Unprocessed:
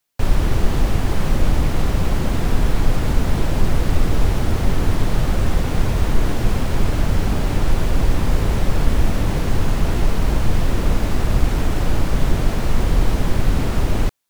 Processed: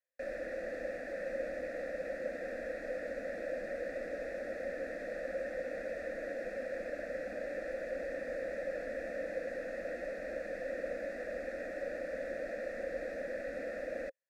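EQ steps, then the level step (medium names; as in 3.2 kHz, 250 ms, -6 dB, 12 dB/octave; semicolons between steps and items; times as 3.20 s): vowel filter e; peaking EQ 100 Hz -9.5 dB 2.1 oct; static phaser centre 610 Hz, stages 8; +2.0 dB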